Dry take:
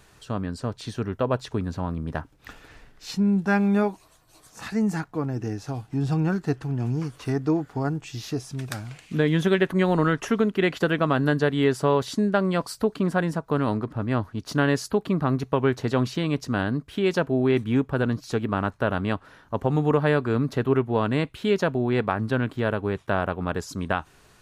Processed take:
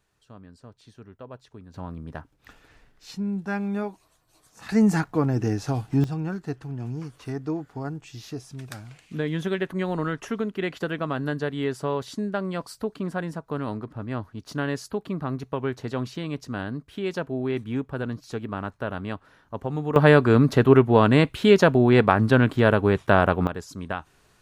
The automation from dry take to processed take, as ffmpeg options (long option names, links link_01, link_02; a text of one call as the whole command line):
ffmpeg -i in.wav -af "asetnsamples=nb_out_samples=441:pad=0,asendcmd='1.74 volume volume -7dB;4.69 volume volume 5dB;6.04 volume volume -6dB;19.96 volume volume 6.5dB;23.47 volume volume -5dB',volume=-17.5dB" out.wav